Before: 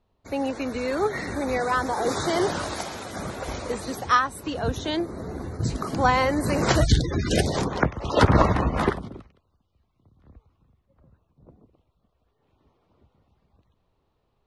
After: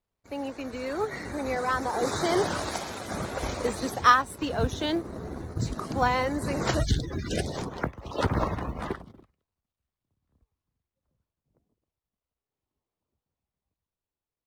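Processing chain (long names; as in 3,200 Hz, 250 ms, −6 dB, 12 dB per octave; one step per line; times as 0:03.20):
mu-law and A-law mismatch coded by A
source passing by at 0:03.66, 7 m/s, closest 9.7 metres
level +2 dB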